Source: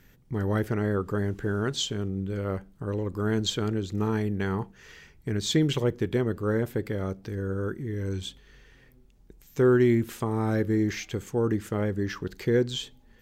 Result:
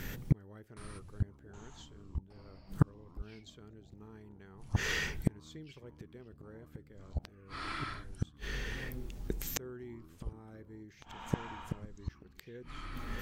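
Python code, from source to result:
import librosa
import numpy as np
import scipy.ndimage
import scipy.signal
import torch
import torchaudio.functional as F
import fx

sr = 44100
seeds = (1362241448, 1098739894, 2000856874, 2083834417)

y = fx.gate_flip(x, sr, shuts_db=-28.0, range_db=-42)
y = fx.echo_pitch(y, sr, ms=768, semitones=-6, count=3, db_per_echo=-6.0)
y = y * 10.0 ** (15.5 / 20.0)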